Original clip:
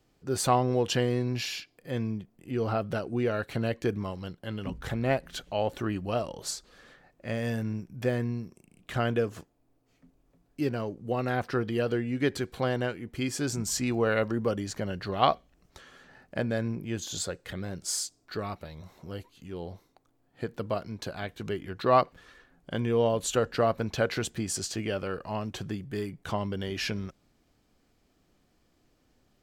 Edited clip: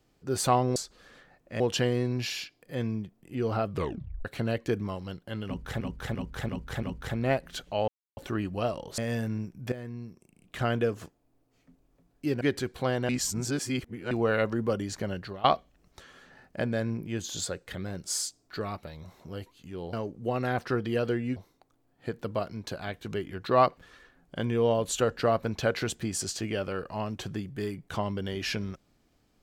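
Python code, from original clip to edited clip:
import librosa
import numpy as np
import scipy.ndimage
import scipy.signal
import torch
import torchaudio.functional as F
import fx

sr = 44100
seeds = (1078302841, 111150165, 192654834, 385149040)

y = fx.edit(x, sr, fx.tape_stop(start_s=2.85, length_s=0.56),
    fx.repeat(start_s=4.63, length_s=0.34, count=5),
    fx.insert_silence(at_s=5.68, length_s=0.29),
    fx.move(start_s=6.49, length_s=0.84, to_s=0.76),
    fx.fade_in_from(start_s=8.07, length_s=0.86, floor_db=-14.0),
    fx.move(start_s=10.76, length_s=1.43, to_s=19.71),
    fx.reverse_span(start_s=12.87, length_s=1.02),
    fx.fade_out_to(start_s=14.92, length_s=0.3, floor_db=-16.0), tone=tone)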